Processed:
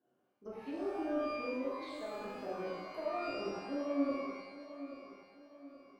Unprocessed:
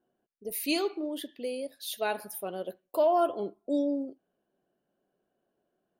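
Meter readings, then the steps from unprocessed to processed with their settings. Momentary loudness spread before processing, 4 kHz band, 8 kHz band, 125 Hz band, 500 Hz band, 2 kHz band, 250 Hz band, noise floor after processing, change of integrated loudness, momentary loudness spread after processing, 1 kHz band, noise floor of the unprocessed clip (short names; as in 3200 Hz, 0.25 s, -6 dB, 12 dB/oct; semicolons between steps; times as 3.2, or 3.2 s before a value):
12 LU, -13.0 dB, under -20 dB, n/a, -8.0 dB, -5.5 dB, -5.0 dB, -77 dBFS, -8.0 dB, 19 LU, -8.5 dB, -81 dBFS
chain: HPF 84 Hz 24 dB/oct; bell 11000 Hz -7 dB 1.8 oct; reverse; compressor, threshold -37 dBFS, peak gain reduction 15 dB; reverse; limiter -37.5 dBFS, peak gain reduction 9 dB; added harmonics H 3 -15 dB, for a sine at -37.5 dBFS; treble ducked by the level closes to 700 Hz, closed at -43 dBFS; on a send: darkening echo 0.825 s, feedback 44%, level -12.5 dB; on the sum: shimmer reverb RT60 1.1 s, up +12 st, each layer -8 dB, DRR -7 dB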